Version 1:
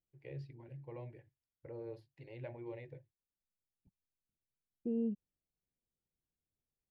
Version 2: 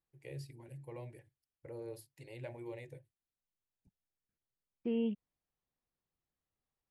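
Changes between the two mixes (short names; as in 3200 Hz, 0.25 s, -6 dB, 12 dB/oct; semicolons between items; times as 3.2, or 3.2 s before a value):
second voice: remove running mean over 40 samples; master: remove air absorption 270 m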